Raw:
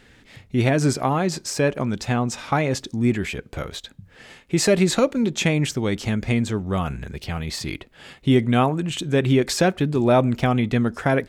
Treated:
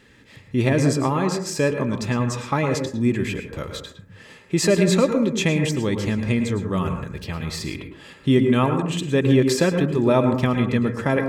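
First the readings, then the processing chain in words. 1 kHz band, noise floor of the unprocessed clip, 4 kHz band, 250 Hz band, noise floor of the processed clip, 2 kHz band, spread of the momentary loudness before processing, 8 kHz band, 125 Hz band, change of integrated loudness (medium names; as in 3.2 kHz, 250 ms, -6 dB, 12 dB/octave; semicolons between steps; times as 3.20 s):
-2.0 dB, -53 dBFS, -1.0 dB, +1.0 dB, -49 dBFS, -0.5 dB, 12 LU, -1.0 dB, +0.5 dB, +0.5 dB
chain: comb of notches 740 Hz; plate-style reverb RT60 0.54 s, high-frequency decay 0.3×, pre-delay 95 ms, DRR 6 dB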